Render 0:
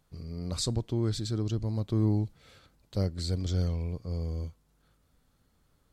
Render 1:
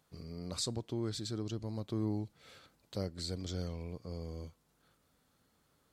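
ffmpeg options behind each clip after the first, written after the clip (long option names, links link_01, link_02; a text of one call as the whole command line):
ffmpeg -i in.wav -filter_complex "[0:a]highpass=frequency=220:poles=1,asplit=2[link_01][link_02];[link_02]acompressor=threshold=-43dB:ratio=6,volume=1dB[link_03];[link_01][link_03]amix=inputs=2:normalize=0,volume=-6dB" out.wav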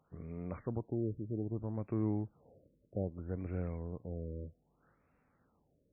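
ffmpeg -i in.wav -af "afftfilt=real='re*lt(b*sr/1024,600*pow(2800/600,0.5+0.5*sin(2*PI*0.63*pts/sr)))':imag='im*lt(b*sr/1024,600*pow(2800/600,0.5+0.5*sin(2*PI*0.63*pts/sr)))':win_size=1024:overlap=0.75,volume=1dB" out.wav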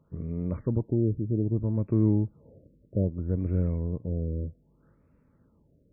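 ffmpeg -i in.wav -af "asuperstop=centerf=750:order=8:qfactor=6,tiltshelf=frequency=670:gain=8.5,volume=4.5dB" out.wav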